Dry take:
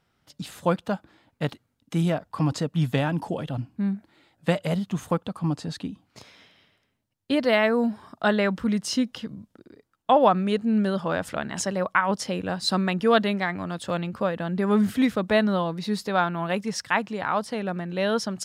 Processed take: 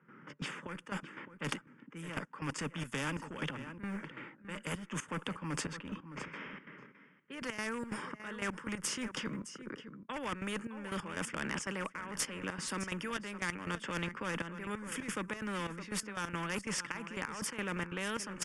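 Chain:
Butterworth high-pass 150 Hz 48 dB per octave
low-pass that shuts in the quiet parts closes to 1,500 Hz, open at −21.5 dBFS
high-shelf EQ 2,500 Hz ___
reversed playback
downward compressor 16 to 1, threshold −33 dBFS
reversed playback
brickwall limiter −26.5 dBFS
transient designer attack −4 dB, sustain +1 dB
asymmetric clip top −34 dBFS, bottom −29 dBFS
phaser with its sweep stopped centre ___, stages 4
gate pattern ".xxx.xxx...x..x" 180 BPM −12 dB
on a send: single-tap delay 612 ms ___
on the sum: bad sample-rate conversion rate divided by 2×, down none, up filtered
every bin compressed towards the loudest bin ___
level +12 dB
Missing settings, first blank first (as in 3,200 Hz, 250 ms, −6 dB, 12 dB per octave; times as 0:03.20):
−2.5 dB, 1,700 Hz, −20.5 dB, 2 to 1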